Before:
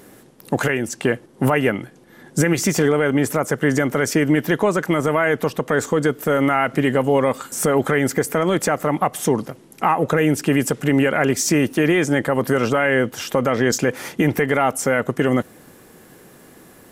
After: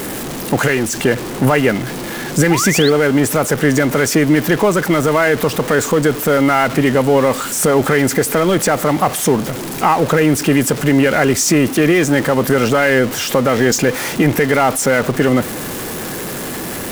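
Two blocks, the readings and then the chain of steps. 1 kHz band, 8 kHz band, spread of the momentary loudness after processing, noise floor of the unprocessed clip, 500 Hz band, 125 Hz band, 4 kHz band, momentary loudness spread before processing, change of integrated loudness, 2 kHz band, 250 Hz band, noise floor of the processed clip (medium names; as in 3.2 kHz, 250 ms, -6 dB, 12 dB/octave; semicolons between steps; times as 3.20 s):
+5.0 dB, +7.5 dB, 9 LU, -48 dBFS, +5.0 dB, +5.0 dB, +8.0 dB, 5 LU, +4.5 dB, +5.0 dB, +5.0 dB, -25 dBFS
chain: jump at every zero crossing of -22.5 dBFS; painted sound rise, 2.50–2.90 s, 740–4600 Hz -24 dBFS; trim +3 dB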